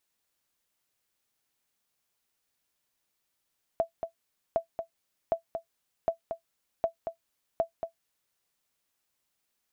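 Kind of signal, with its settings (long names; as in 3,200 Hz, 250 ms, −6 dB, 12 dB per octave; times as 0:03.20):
ping with an echo 665 Hz, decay 0.11 s, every 0.76 s, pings 6, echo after 0.23 s, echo −7.5 dB −16.5 dBFS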